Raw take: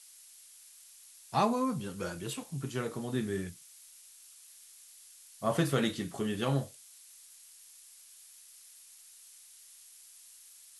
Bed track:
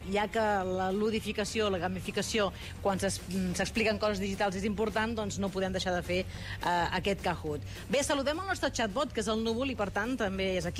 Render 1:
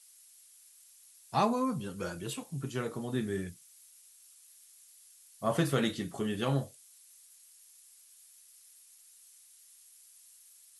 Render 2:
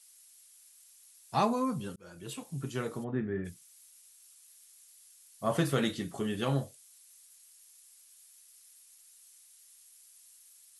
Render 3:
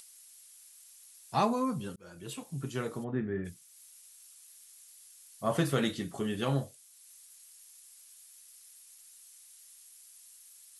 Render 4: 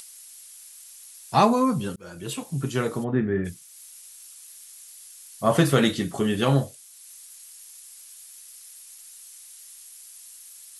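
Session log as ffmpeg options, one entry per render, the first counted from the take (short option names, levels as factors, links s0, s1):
-af "afftdn=nr=6:nf=-56"
-filter_complex "[0:a]asplit=3[s0][s1][s2];[s0]afade=t=out:st=3.03:d=0.02[s3];[s1]lowpass=f=2100:w=0.5412,lowpass=f=2100:w=1.3066,afade=t=in:st=3.03:d=0.02,afade=t=out:st=3.44:d=0.02[s4];[s2]afade=t=in:st=3.44:d=0.02[s5];[s3][s4][s5]amix=inputs=3:normalize=0,asplit=2[s6][s7];[s6]atrim=end=1.96,asetpts=PTS-STARTPTS,afade=t=out:st=1.956:d=0.004:c=hsin[s8];[s7]atrim=start=1.96,asetpts=PTS-STARTPTS,afade=t=in:d=0.52[s9];[s8][s9]concat=n=2:v=0:a=1"
-af "acompressor=mode=upward:threshold=0.00355:ratio=2.5"
-af "volume=2.99"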